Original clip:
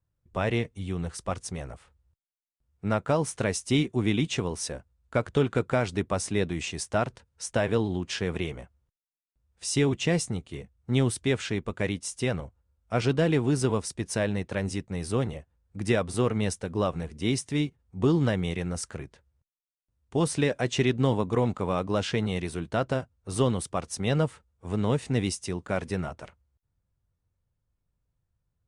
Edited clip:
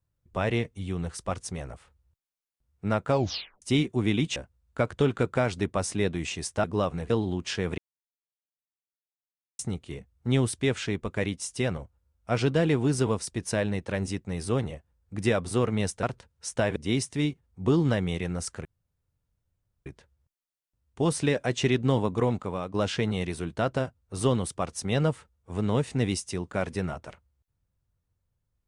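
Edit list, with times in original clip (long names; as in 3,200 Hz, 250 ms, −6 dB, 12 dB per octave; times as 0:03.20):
0:03.10: tape stop 0.52 s
0:04.36–0:04.72: remove
0:07.00–0:07.73: swap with 0:16.66–0:17.12
0:08.41–0:10.22: silence
0:19.01: splice in room tone 1.21 s
0:21.37–0:21.89: fade out, to −8.5 dB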